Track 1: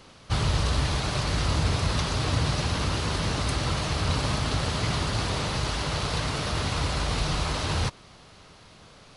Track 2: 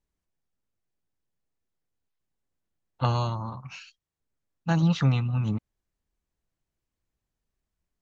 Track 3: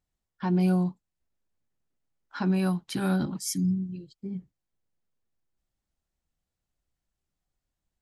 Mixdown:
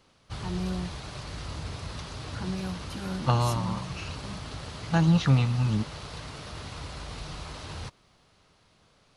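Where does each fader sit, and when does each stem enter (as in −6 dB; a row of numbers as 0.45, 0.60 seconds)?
−12.0, +1.0, −9.0 decibels; 0.00, 0.25, 0.00 seconds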